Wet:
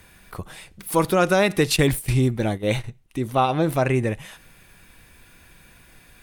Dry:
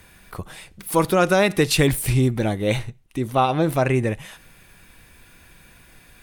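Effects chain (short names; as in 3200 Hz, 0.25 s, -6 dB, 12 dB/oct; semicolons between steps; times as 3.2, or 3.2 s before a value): 1.76–2.84 gate -24 dBFS, range -11 dB; gain -1 dB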